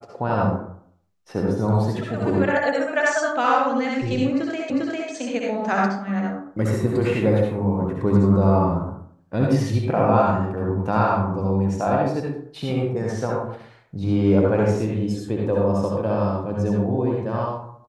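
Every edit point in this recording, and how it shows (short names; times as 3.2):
4.7 repeat of the last 0.4 s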